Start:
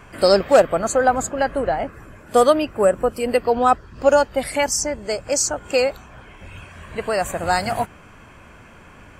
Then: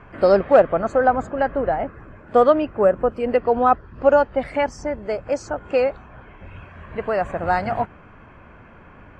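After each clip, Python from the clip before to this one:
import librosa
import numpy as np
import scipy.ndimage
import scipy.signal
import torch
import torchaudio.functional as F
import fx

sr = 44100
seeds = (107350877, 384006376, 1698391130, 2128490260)

y = scipy.signal.sosfilt(scipy.signal.butter(2, 1900.0, 'lowpass', fs=sr, output='sos'), x)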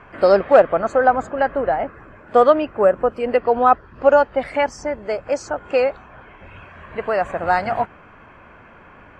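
y = fx.low_shelf(x, sr, hz=300.0, db=-8.5)
y = y * librosa.db_to_amplitude(3.5)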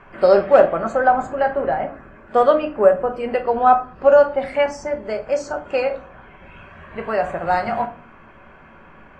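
y = fx.room_shoebox(x, sr, seeds[0], volume_m3=240.0, walls='furnished', distance_m=1.1)
y = y * librosa.db_to_amplitude(-2.5)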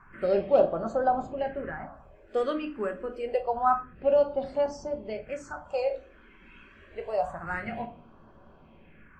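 y = fx.phaser_stages(x, sr, stages=4, low_hz=110.0, high_hz=2200.0, hz=0.27, feedback_pct=25)
y = y * librosa.db_to_amplitude(-7.0)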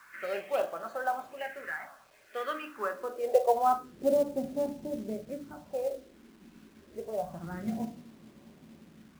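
y = fx.filter_sweep_bandpass(x, sr, from_hz=2100.0, to_hz=230.0, start_s=2.36, end_s=4.24, q=1.8)
y = fx.quant_companded(y, sr, bits=6)
y = y * librosa.db_to_amplitude(6.5)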